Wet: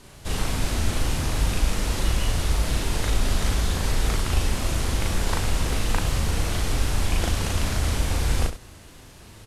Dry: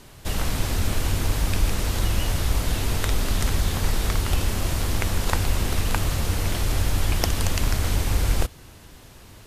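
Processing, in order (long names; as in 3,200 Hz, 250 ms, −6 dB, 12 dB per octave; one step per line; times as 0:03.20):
variable-slope delta modulation 64 kbit/s
loudspeakers that aren't time-aligned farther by 13 metres −1 dB, 36 metres −11 dB
level −2.5 dB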